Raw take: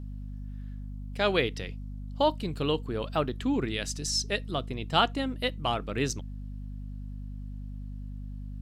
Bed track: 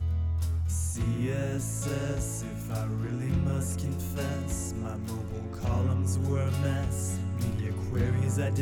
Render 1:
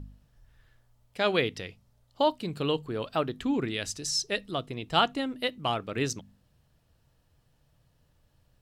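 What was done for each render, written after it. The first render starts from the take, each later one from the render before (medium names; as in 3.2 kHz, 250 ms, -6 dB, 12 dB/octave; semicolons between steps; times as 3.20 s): de-hum 50 Hz, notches 5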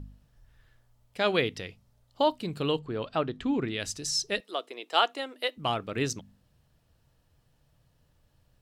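2.79–3.80 s: distance through air 76 m; 4.40–5.57 s: high-pass 380 Hz 24 dB/octave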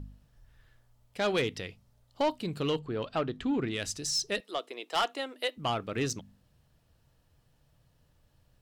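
saturation -21.5 dBFS, distortion -12 dB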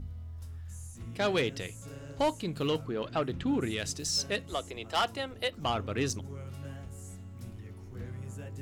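add bed track -14 dB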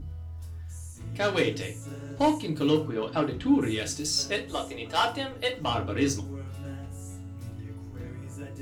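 FDN reverb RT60 0.31 s, low-frequency decay 0.95×, high-frequency decay 0.8×, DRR -0.5 dB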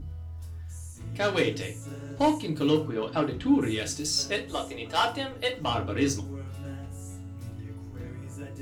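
no audible change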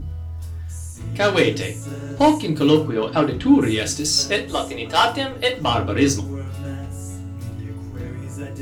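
trim +8.5 dB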